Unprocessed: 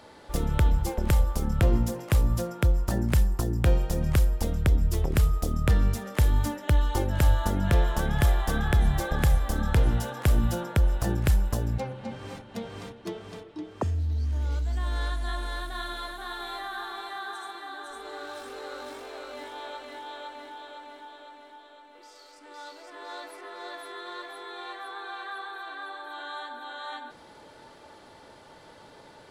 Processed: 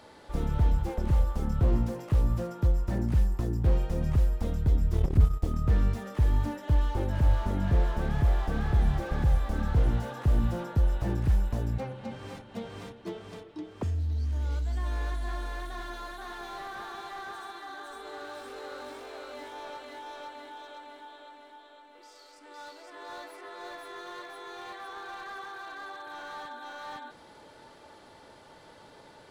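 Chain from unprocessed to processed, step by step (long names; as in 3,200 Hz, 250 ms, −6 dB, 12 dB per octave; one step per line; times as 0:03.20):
0:04.92–0:05.45: transient designer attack +11 dB, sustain −10 dB
slew-rate limiting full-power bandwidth 21 Hz
level −2 dB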